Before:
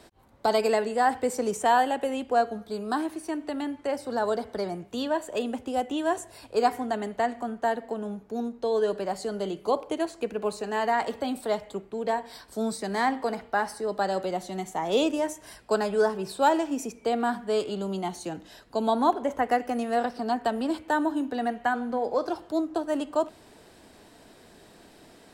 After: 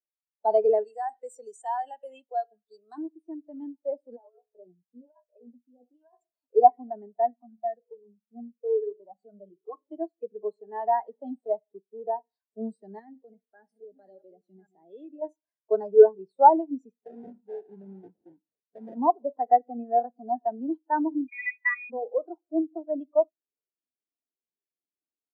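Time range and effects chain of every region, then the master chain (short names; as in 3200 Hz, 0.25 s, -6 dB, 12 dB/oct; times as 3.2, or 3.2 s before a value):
0.84–2.98 tilt +4 dB/oct + compressor 2:1, threshold -26 dBFS
4.16–6.21 resonator 61 Hz, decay 0.22 s, mix 90% + negative-ratio compressor -33 dBFS, ratio -0.5 + photocell phaser 1.2 Hz
7.35–9.92 low shelf 160 Hz +9 dB + de-hum 53.83 Hz, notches 10 + cascading flanger falling 1.2 Hz
12.99–15.22 reverse delay 0.559 s, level -9.5 dB + bell 950 Hz -10.5 dB 1.1 oct + compressor 3:1, threshold -31 dBFS
16.95–18.97 compressor 2.5:1, threshold -27 dBFS + sample-rate reducer 1200 Hz, jitter 20%
21.28–21.9 HPF 200 Hz + inverted band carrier 2700 Hz
whole clip: HPF 150 Hz 6 dB/oct; spectral expander 2.5:1; gain +7 dB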